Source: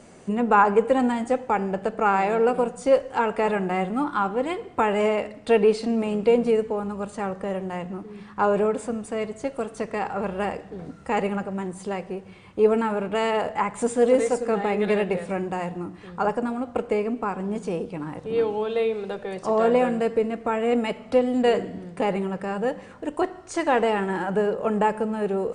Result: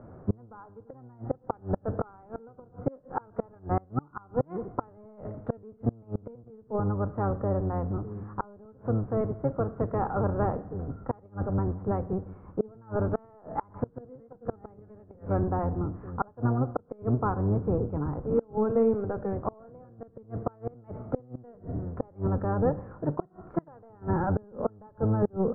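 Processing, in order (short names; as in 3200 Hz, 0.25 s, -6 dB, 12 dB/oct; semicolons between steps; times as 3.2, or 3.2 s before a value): octaver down 1 oct, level +4 dB; flipped gate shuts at -13 dBFS, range -30 dB; Chebyshev low-pass 1400 Hz, order 4; gain -1 dB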